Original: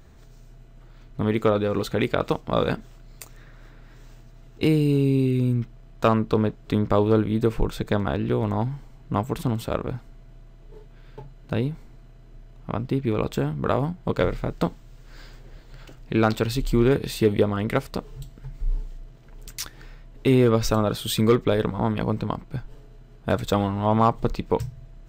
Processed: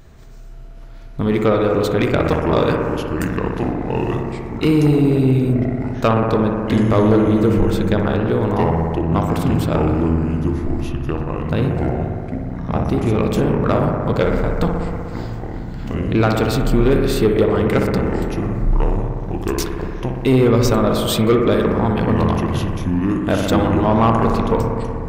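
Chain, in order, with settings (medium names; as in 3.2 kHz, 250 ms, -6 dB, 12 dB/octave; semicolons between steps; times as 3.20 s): ever faster or slower copies 523 ms, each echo -5 st, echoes 3, each echo -6 dB; bucket-brigade echo 61 ms, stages 1024, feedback 84%, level -7 dB; saturation -11.5 dBFS, distortion -18 dB; trim +5.5 dB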